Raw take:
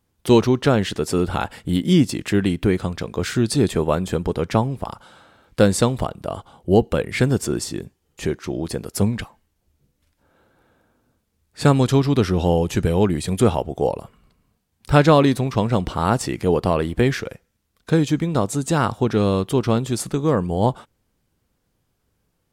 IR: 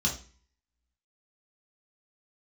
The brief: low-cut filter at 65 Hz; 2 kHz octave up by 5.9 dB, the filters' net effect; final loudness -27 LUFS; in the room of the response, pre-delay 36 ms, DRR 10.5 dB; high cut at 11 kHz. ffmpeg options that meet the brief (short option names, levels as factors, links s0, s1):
-filter_complex "[0:a]highpass=65,lowpass=11000,equalizer=f=2000:t=o:g=8,asplit=2[s0][s1];[1:a]atrim=start_sample=2205,adelay=36[s2];[s1][s2]afir=irnorm=-1:irlink=0,volume=0.126[s3];[s0][s3]amix=inputs=2:normalize=0,volume=0.398"